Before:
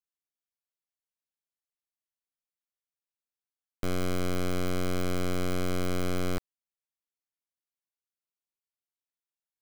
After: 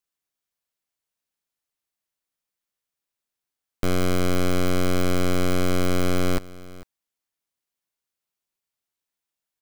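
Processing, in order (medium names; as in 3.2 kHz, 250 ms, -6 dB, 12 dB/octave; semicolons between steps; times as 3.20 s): delay 449 ms -19.5 dB; trim +7.5 dB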